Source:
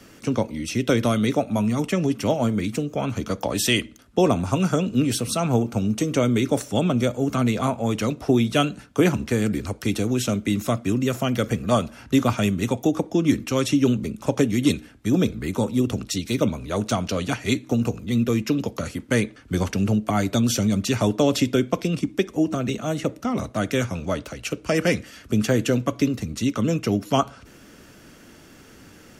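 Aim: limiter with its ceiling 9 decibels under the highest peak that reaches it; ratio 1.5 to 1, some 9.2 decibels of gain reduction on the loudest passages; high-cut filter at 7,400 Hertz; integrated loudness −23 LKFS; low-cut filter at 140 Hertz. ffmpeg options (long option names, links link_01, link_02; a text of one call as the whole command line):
ffmpeg -i in.wav -af "highpass=140,lowpass=7400,acompressor=threshold=-41dB:ratio=1.5,volume=11.5dB,alimiter=limit=-12.5dB:level=0:latency=1" out.wav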